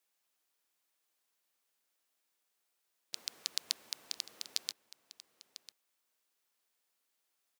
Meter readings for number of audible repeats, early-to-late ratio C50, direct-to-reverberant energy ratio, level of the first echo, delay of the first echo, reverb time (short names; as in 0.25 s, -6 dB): 1, none, none, -15.5 dB, 0.998 s, none